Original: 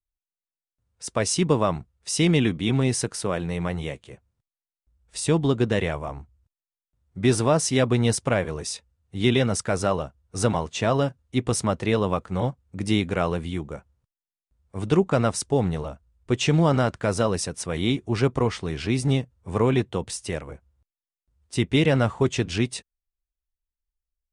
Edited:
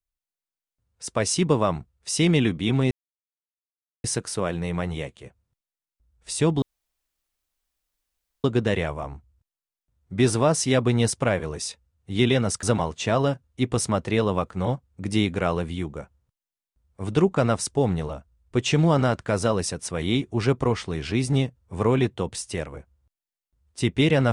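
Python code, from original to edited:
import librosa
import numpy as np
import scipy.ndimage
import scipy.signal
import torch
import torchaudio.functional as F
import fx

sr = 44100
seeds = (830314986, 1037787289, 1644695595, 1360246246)

y = fx.edit(x, sr, fx.insert_silence(at_s=2.91, length_s=1.13),
    fx.insert_room_tone(at_s=5.49, length_s=1.82),
    fx.cut(start_s=9.68, length_s=0.7), tone=tone)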